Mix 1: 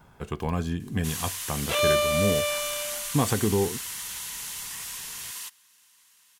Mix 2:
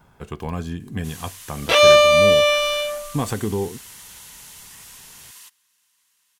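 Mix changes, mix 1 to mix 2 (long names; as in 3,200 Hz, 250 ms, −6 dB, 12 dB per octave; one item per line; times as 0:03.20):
first sound −6.5 dB
second sound +11.5 dB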